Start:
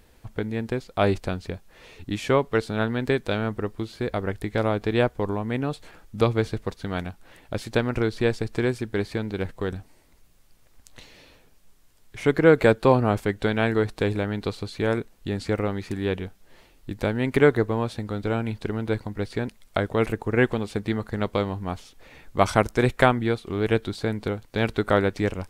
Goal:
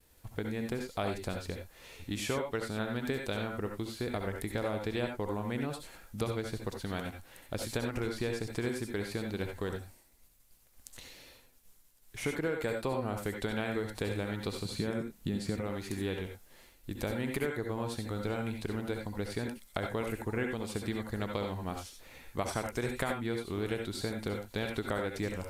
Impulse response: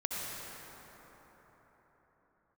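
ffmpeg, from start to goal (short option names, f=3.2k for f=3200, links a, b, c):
-filter_complex "[0:a]aemphasis=mode=production:type=50kf,agate=range=-33dB:threshold=-49dB:ratio=3:detection=peak,asettb=1/sr,asplit=3[a][b][c];[a]atrim=end=14.654[d];[b]atrim=start=14.65:end=15.61,asetpts=PTS-STARTPTS,afade=t=in:d=0.004:c=qsin,afade=t=out:st=0.956:d=0.004:c=qsin,equalizer=f=180:w=1.1:g=11[e];[c]atrim=start=15.606[f];[d][e]acrossfade=d=0.004:c1=hsin:c2=qsin[g];[g][f]acrossfade=d=0.004:c1=qsin:c2=hsin,acompressor=threshold=-24dB:ratio=6[h];[1:a]atrim=start_sample=2205,atrim=end_sample=4410[i];[h][i]afir=irnorm=-1:irlink=0,volume=-5dB" -ar 32000 -c:a aac -b:a 96k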